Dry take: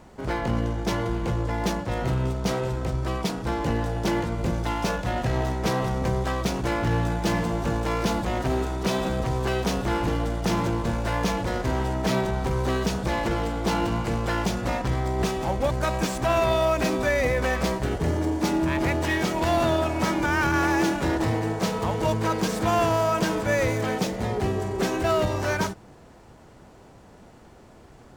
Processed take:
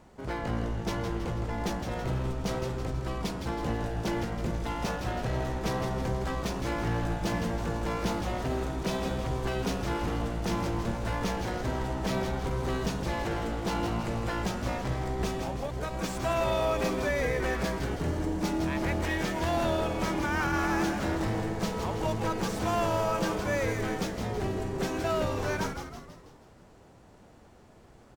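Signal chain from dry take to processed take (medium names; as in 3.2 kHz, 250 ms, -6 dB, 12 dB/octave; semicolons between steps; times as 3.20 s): 15.39–16.04 s: compression 4:1, threshold -25 dBFS, peak gain reduction 5.5 dB; frequency-shifting echo 162 ms, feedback 51%, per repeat -120 Hz, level -7 dB; trim -6.5 dB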